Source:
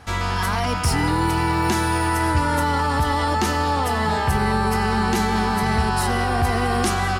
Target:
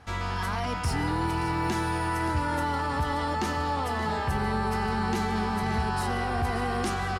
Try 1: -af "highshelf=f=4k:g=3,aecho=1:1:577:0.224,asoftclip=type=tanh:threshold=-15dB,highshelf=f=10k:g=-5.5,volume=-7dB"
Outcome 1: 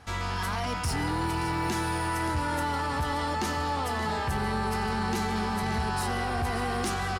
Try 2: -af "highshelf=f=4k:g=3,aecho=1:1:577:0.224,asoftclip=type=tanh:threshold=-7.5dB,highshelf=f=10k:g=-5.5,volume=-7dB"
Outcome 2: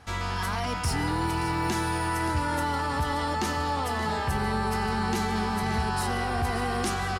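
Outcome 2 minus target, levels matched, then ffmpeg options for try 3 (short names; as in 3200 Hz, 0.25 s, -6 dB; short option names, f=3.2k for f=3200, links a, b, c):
8000 Hz band +4.5 dB
-af "highshelf=f=4k:g=-3,aecho=1:1:577:0.224,asoftclip=type=tanh:threshold=-7.5dB,highshelf=f=10k:g=-5.5,volume=-7dB"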